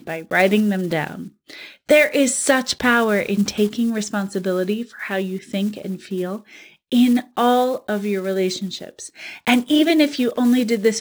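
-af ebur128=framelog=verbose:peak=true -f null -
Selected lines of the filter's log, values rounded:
Integrated loudness:
  I:         -19.4 LUFS
  Threshold: -29.9 LUFS
Loudness range:
  LRA:         4.7 LU
  Threshold: -40.3 LUFS
  LRA low:   -23.1 LUFS
  LRA high:  -18.4 LUFS
True peak:
  Peak:       -2.2 dBFS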